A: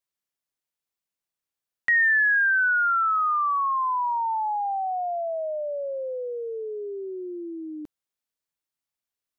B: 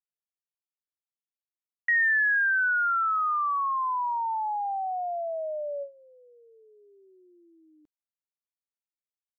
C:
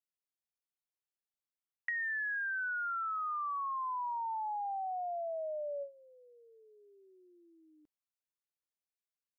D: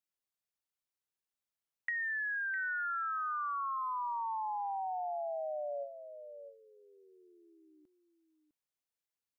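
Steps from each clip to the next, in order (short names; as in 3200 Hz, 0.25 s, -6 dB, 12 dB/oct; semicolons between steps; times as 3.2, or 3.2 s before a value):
gate with hold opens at -21 dBFS; gain -3 dB
compressor, threshold -30 dBFS, peak gain reduction 8.5 dB; gain -5 dB
echo 0.655 s -11 dB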